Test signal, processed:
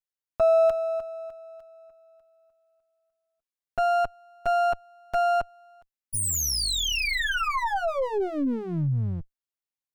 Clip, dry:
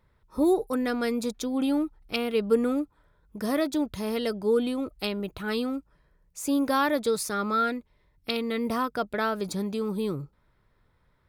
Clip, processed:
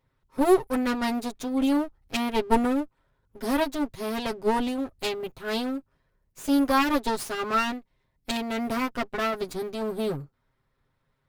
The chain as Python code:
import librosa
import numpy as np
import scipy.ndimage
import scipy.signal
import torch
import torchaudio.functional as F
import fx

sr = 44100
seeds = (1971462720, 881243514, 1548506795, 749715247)

y = fx.lower_of_two(x, sr, delay_ms=7.5)
y = fx.upward_expand(y, sr, threshold_db=-39.0, expansion=1.5)
y = y * 10.0 ** (5.5 / 20.0)